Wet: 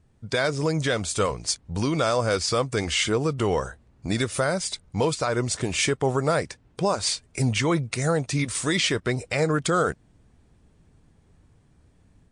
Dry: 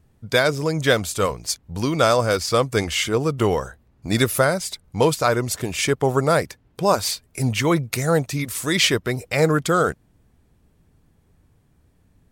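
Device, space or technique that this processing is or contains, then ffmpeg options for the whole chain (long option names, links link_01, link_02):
low-bitrate web radio: -af "dynaudnorm=framelen=120:gausssize=3:maxgain=4dB,alimiter=limit=-10dB:level=0:latency=1:release=135,volume=-2.5dB" -ar 22050 -c:a libmp3lame -b:a 48k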